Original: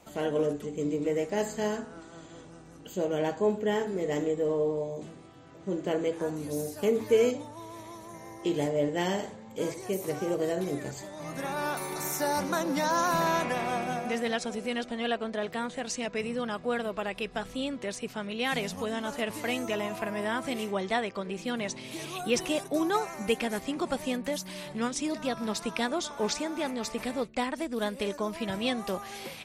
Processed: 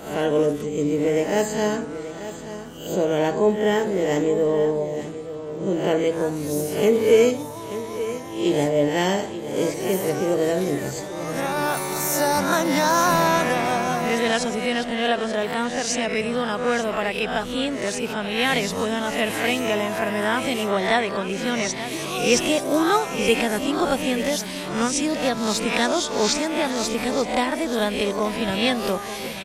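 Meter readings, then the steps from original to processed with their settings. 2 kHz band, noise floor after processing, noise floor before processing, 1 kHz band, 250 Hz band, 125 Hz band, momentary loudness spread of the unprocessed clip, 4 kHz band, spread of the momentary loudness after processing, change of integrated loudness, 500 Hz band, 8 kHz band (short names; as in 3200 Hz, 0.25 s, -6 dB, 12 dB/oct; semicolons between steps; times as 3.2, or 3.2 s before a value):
+10.0 dB, -33 dBFS, -48 dBFS, +8.5 dB, +8.0 dB, +8.5 dB, 10 LU, +10.0 dB, 8 LU, +8.5 dB, +8.5 dB, +10.5 dB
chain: spectral swells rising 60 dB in 0.55 s; on a send: echo 0.883 s -12.5 dB; on the sum: gain +7 dB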